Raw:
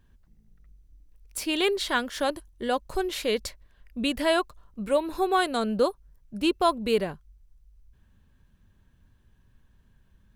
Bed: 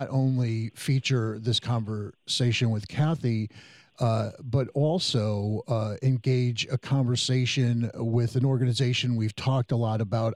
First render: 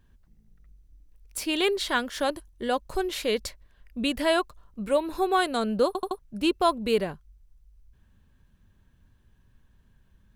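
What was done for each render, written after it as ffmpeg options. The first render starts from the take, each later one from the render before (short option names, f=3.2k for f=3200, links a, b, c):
-filter_complex "[0:a]asplit=5[a][b][c][d][e];[a]atrim=end=5.952[f];[b]atrim=start=5.868:end=5.952[g];[c]atrim=start=5.868:end=5.952[h];[d]atrim=start=5.868:end=5.952[i];[e]atrim=start=6.188[j];[f][g]acrossfade=d=0.004:c1=hsin:c2=hsin[k];[k][h]acrossfade=d=0.004:c1=hsin:c2=hsin[l];[l][i]acrossfade=d=0.004:c1=hsin:c2=hsin[m];[m][j]acrossfade=d=0.004:c1=hsin:c2=hsin"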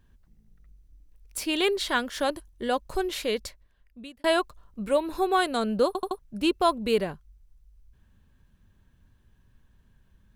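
-filter_complex "[0:a]asplit=2[a][b];[a]atrim=end=4.24,asetpts=PTS-STARTPTS,afade=t=out:st=3.12:d=1.12[c];[b]atrim=start=4.24,asetpts=PTS-STARTPTS,afade=t=in:d=0.004:c=hsin[d];[c][d]concat=n=2:v=0:a=1"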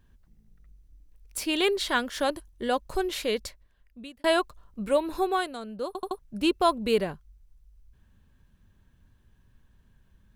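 -filter_complex "[0:a]asplit=3[a][b][c];[a]atrim=end=5.58,asetpts=PTS-STARTPTS,afade=t=out:st=5.18:d=0.4:silence=0.266073[d];[b]atrim=start=5.58:end=5.8,asetpts=PTS-STARTPTS,volume=-11.5dB[e];[c]atrim=start=5.8,asetpts=PTS-STARTPTS,afade=t=in:d=0.4:silence=0.266073[f];[d][e][f]concat=n=3:v=0:a=1"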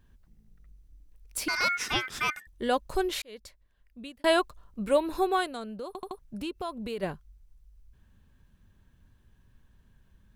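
-filter_complex "[0:a]asettb=1/sr,asplit=3[a][b][c];[a]atrim=end=1.484[d];[b]atrim=start=1.48:end=2.47,asetpts=PTS-STARTPTS,afade=t=in:d=0.004:c=qsin,afade=t=out:st=0.986:d=0.004:c=qsin,aeval=exprs='val(0)*sin(2*PI*1800*n/s)':c=same[e];[c]atrim=start=2.466[f];[d][e]acrossfade=d=0.004:c1=hsin:c2=qsin[g];[g][f]acrossfade=d=0.004:c1=qsin:c2=hsin,asplit=3[h][i][j];[h]afade=t=out:st=5.78:d=0.02[k];[i]acompressor=threshold=-35dB:ratio=3:attack=3.2:release=140:knee=1:detection=peak,afade=t=in:st=5.78:d=0.02,afade=t=out:st=7.02:d=0.02[l];[j]afade=t=in:st=7.02:d=0.02[m];[k][l][m]amix=inputs=3:normalize=0,asplit=2[n][o];[n]atrim=end=3.22,asetpts=PTS-STARTPTS,afade=t=out:st=3.216:d=0.004:c=hsin[p];[o]atrim=start=3.22,asetpts=PTS-STARTPTS,afade=t=in:d=0.8[q];[p][q]concat=n=2:v=0:a=1"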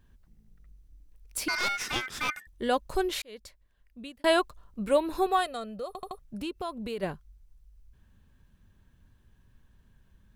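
-filter_complex "[0:a]asettb=1/sr,asplit=3[a][b][c];[a]atrim=end=1.584[d];[b]atrim=start=1.58:end=2.29,asetpts=PTS-STARTPTS,afade=t=in:d=0.004:c=qsin,afade=t=out:st=0.706:d=0.004:c=qsin,aeval=exprs='clip(val(0),-1,0.0266)':c=same[e];[c]atrim=start=2.286[f];[d][e]acrossfade=d=0.004:c1=hsin:c2=qsin[g];[g][f]acrossfade=d=0.004:c1=qsin:c2=hsin,asettb=1/sr,asplit=3[h][i][j];[h]atrim=end=5.264[k];[i]atrim=start=5.26:end=6.22,asetpts=PTS-STARTPTS,afade=t=in:d=0.004:c=qsin,afade=t=out:st=0.956:d=0.004:c=qsin,aecho=1:1:1.6:0.65,atrim=end_sample=42336[l];[j]atrim=start=6.216[m];[k][l]acrossfade=d=0.004:c1=hsin:c2=qsin[n];[n][m]acrossfade=d=0.004:c1=qsin:c2=hsin"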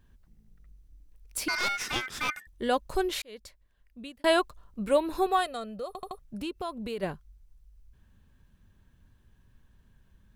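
-af anull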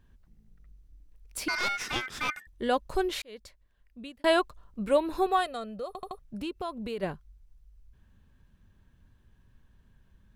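-af "highshelf=f=6.3k:g=-5.5"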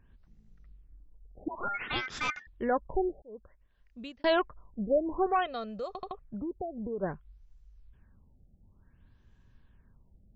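-af "asoftclip=type=tanh:threshold=-18dB,afftfilt=real='re*lt(b*sr/1024,800*pow(7900/800,0.5+0.5*sin(2*PI*0.56*pts/sr)))':imag='im*lt(b*sr/1024,800*pow(7900/800,0.5+0.5*sin(2*PI*0.56*pts/sr)))':win_size=1024:overlap=0.75"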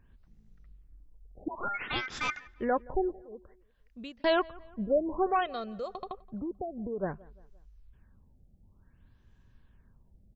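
-filter_complex "[0:a]asplit=2[a][b];[b]adelay=173,lowpass=f=3.2k:p=1,volume=-23dB,asplit=2[c][d];[d]adelay=173,lowpass=f=3.2k:p=1,volume=0.47,asplit=2[e][f];[f]adelay=173,lowpass=f=3.2k:p=1,volume=0.47[g];[a][c][e][g]amix=inputs=4:normalize=0"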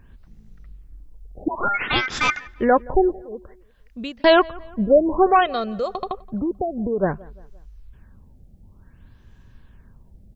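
-af "volume=12dB"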